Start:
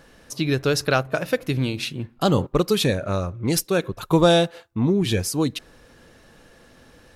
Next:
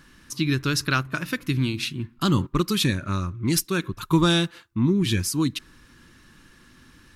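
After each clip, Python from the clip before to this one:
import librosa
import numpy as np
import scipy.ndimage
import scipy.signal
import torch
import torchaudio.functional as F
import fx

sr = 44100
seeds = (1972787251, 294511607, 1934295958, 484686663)

y = fx.band_shelf(x, sr, hz=590.0, db=-15.5, octaves=1.1)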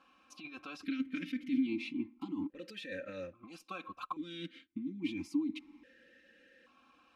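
y = x + 1.0 * np.pad(x, (int(3.8 * sr / 1000.0), 0))[:len(x)]
y = fx.over_compress(y, sr, threshold_db=-25.0, ratio=-1.0)
y = fx.vowel_held(y, sr, hz=1.2)
y = F.gain(torch.from_numpy(y), -2.5).numpy()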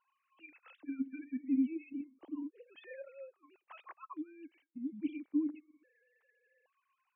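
y = fx.sine_speech(x, sr)
y = F.gain(torch.from_numpy(y), -1.0).numpy()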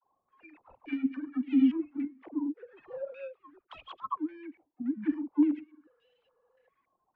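y = scipy.signal.medfilt(x, 25)
y = fx.dispersion(y, sr, late='lows', ms=47.0, hz=630.0)
y = fx.filter_held_lowpass(y, sr, hz=3.5, low_hz=770.0, high_hz=3000.0)
y = F.gain(torch.from_numpy(y), 7.5).numpy()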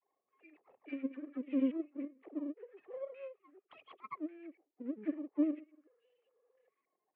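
y = np.where(x < 0.0, 10.0 ** (-7.0 / 20.0) * x, x)
y = fx.cabinet(y, sr, low_hz=290.0, low_slope=12, high_hz=2700.0, hz=(410.0, 950.0, 1500.0), db=(9, -9, -9))
y = F.gain(torch.from_numpy(y), -3.0).numpy()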